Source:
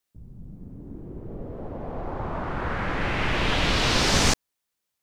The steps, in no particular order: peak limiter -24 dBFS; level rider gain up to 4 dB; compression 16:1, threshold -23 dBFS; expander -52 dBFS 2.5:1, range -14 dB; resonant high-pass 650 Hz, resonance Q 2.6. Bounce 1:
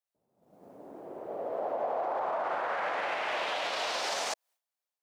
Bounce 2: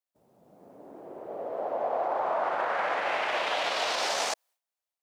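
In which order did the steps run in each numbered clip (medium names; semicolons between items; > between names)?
level rider > compression > resonant high-pass > expander > peak limiter; peak limiter > level rider > expander > resonant high-pass > compression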